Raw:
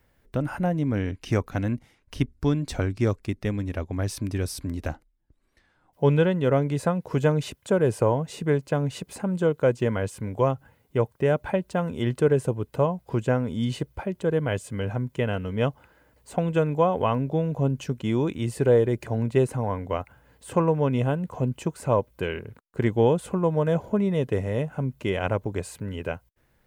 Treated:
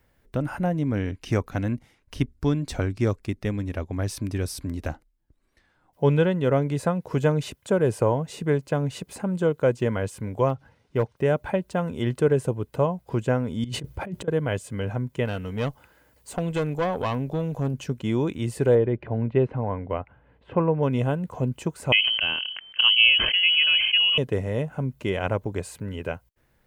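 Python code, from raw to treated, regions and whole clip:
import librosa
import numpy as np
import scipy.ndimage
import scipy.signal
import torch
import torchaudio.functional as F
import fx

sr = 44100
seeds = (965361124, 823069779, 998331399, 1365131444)

y = fx.chain(x, sr, fx.clip_hard(threshold_db=-15.0),
    fx.resample_linear(factor=3), at=(10.49, 11.17))
y = fx.chain(y, sr, fx.over_compress(threshold_db=-37.0, ratio=-1.0),
    fx.peak_eq(hz=130.0, db=6.5, octaves=2.8), at=(13.64, 14.28))
y = fx.chain(y, sr, fx.high_shelf(hz=3000.0, db=7.5),
    fx.tube_stage(drive_db=19.0, bias=0.35), at=(15.25, 17.74))
y = fx.chain(y, sr, fx.lowpass(hz=2800.0, slope=24),
    fx.peak_eq(hz=1600.0, db=-3.0, octaves=1.4), at=(18.75, 20.83))
y = fx.chain(y, sr, fx.low_shelf(hz=130.0, db=8.5),
    fx.freq_invert(carrier_hz=3100),
    fx.sustainer(db_per_s=40.0), at=(21.92, 24.18))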